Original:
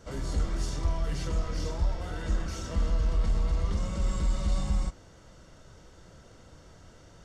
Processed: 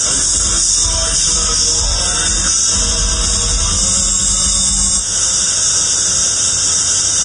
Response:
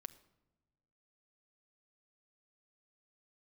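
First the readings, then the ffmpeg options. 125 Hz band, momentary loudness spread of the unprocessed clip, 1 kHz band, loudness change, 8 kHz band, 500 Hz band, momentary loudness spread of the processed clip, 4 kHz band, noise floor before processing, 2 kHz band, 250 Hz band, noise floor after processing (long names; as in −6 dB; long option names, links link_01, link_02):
+7.5 dB, 4 LU, +16.0 dB, +20.5 dB, +39.5 dB, +11.0 dB, 2 LU, +31.5 dB, −54 dBFS, +20.5 dB, +9.5 dB, −16 dBFS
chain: -filter_complex "[0:a]highpass=frequency=41:width=0.5412,highpass=frequency=41:width=1.3066,aemphasis=mode=production:type=cd,asplit=2[link_01][link_02];[link_02]adelay=21,volume=-9dB[link_03];[link_01][link_03]amix=inputs=2:normalize=0,aecho=1:1:93:0.596,asplit=2[link_04][link_05];[1:a]atrim=start_sample=2205,adelay=11[link_06];[link_05][link_06]afir=irnorm=-1:irlink=0,volume=-6dB[link_07];[link_04][link_07]amix=inputs=2:normalize=0,acontrast=63,equalizer=frequency=1500:width_type=o:width=0.87:gain=11,acompressor=threshold=-37dB:ratio=2.5,asuperstop=centerf=4300:order=8:qfactor=4.9,aexciter=amount=4.7:drive=9.7:freq=3100,alimiter=level_in=20.5dB:limit=-1dB:release=50:level=0:latency=1,volume=-5dB" -ar 22050 -c:a libvorbis -b:a 16k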